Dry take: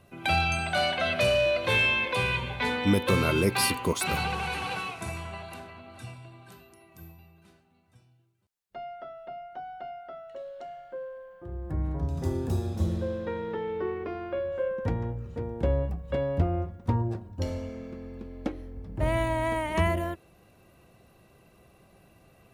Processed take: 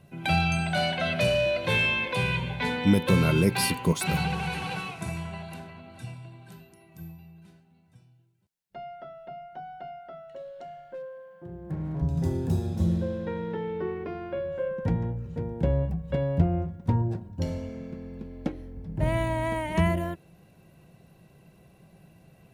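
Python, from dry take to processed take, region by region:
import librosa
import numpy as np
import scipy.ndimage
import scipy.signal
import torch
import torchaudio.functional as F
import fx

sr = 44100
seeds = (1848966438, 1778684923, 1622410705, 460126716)

y = fx.chain(x, sr, fx.highpass(hz=130.0, slope=12),
    fx.clip_hard(threshold_db=-33.0), at=(10.94, 12.02))
y = fx.peak_eq(y, sr, hz=160.0, db=12.0, octaves=0.57)
y = fx.notch(y, sr, hz=1200.0, q=8.4)
y = F.gain(torch.from_numpy(y), -1.0).numpy()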